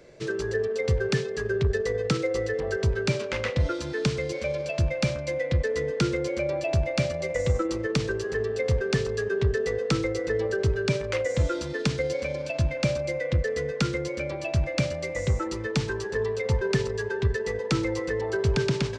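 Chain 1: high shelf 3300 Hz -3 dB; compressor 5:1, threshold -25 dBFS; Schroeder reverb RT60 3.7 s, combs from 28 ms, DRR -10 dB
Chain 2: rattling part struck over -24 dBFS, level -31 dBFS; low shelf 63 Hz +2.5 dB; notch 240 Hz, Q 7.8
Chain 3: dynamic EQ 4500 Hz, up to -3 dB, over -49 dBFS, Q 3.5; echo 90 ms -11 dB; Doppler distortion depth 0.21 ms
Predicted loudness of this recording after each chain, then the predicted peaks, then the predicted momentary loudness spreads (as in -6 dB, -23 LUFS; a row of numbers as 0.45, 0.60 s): -20.5, -27.0, -27.5 LUFS; -6.0, -11.0, -12.0 dBFS; 3, 4, 3 LU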